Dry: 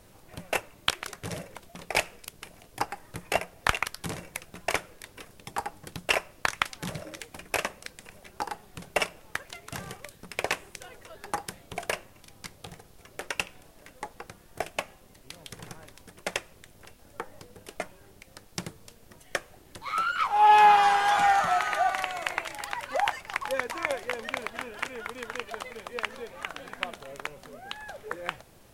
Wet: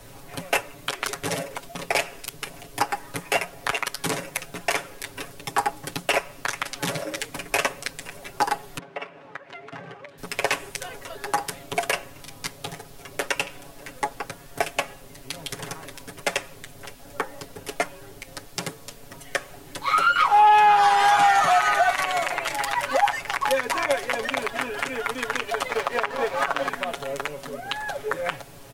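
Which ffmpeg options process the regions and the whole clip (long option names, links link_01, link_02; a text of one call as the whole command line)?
ffmpeg -i in.wav -filter_complex "[0:a]asettb=1/sr,asplit=3[link_01][link_02][link_03];[link_01]atrim=end=8.784[link_04];[link_02]atrim=start=8.78:end=10.18,asetpts=PTS-STARTPTS,afade=type=in:duration=0.004:curve=qsin,afade=type=out:start_time=1.396:duration=0.004:curve=qsin,highpass=190,lowpass=2200,acompressor=threshold=-52dB:ratio=2:attack=3.2:release=140:knee=1:detection=peak[link_05];[link_03]atrim=start=10.176[link_06];[link_04][link_05]acrossfade=duration=0.004:curve1=hsin:curve2=qsin[link_07];[link_07][link_06]acrossfade=duration=0.004:curve1=qsin:curve2=hsin,asettb=1/sr,asplit=3[link_08][link_09][link_10];[link_08]atrim=end=25.694[link_11];[link_09]atrim=start=25.69:end=26.69,asetpts=PTS-STARTPTS,afade=type=in:duration=0.004:curve=qsin,afade=type=out:start_time=0.996:duration=0.004:curve=qsin,equalizer=frequency=890:width_type=o:width=2.8:gain=13.5,aeval=exprs='sgn(val(0))*max(abs(val(0))-0.0075,0)':channel_layout=same[link_12];[link_10]atrim=start=26.686[link_13];[link_11][link_12]acrossfade=duration=0.004:curve1=hsin:curve2=qsin[link_14];[link_14][link_13]acrossfade=duration=0.004:curve1=qsin:curve2=hsin,aecho=1:1:7.2:0.82,acrossover=split=210|870[link_15][link_16][link_17];[link_15]acompressor=threshold=-51dB:ratio=4[link_18];[link_16]acompressor=threshold=-31dB:ratio=4[link_19];[link_17]acompressor=threshold=-26dB:ratio=4[link_20];[link_18][link_19][link_20]amix=inputs=3:normalize=0,alimiter=level_in=16.5dB:limit=-1dB:release=50:level=0:latency=1,volume=-8dB" out.wav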